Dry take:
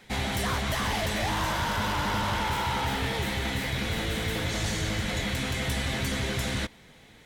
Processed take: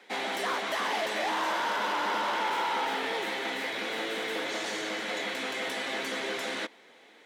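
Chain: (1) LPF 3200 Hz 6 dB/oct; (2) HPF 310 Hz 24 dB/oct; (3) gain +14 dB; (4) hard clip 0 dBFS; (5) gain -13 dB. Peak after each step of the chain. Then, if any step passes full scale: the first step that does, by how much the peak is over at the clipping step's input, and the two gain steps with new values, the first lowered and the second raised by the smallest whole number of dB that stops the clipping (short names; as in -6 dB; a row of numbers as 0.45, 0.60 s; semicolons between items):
-21.0, -19.5, -5.5, -5.5, -18.5 dBFS; no overload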